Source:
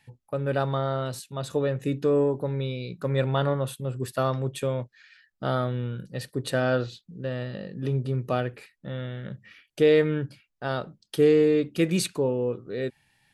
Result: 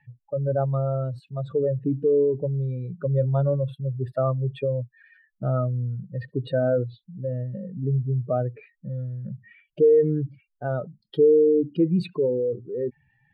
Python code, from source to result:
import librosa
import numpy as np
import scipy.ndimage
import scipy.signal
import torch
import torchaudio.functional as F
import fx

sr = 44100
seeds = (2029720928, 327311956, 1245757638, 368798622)

y = fx.spec_expand(x, sr, power=2.3)
y = fx.air_absorb(y, sr, metres=430.0)
y = y * librosa.db_to_amplitude(3.5)